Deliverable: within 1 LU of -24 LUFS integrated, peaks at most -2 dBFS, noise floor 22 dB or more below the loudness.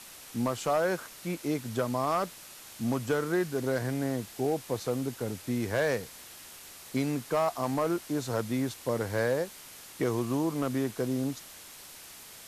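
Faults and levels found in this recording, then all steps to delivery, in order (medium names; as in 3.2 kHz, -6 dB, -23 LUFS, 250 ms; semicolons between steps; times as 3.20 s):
clipped samples 0.5%; clipping level -20.0 dBFS; noise floor -49 dBFS; noise floor target -53 dBFS; loudness -31.0 LUFS; peak level -20.0 dBFS; loudness target -24.0 LUFS
-> clip repair -20 dBFS; noise print and reduce 6 dB; trim +7 dB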